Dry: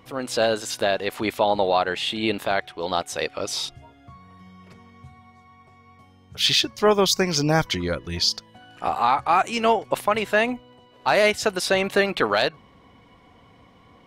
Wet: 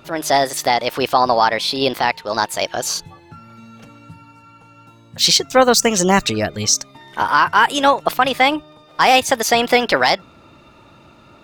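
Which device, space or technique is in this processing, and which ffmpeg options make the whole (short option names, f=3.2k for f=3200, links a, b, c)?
nightcore: -af "asetrate=54243,aresample=44100,volume=6dB"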